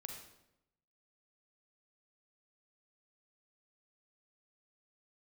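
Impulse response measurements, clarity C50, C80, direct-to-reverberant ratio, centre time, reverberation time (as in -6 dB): 3.5 dB, 6.5 dB, 2.5 dB, 37 ms, 0.85 s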